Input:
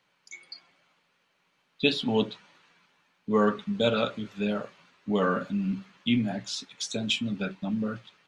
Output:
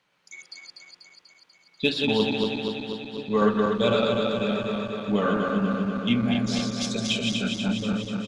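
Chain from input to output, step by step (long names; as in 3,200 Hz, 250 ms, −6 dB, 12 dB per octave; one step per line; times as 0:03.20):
feedback delay that plays each chunk backwards 122 ms, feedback 81%, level −3 dB
slap from a distant wall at 230 metres, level −13 dB
harmonic generator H 6 −34 dB, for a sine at −7 dBFS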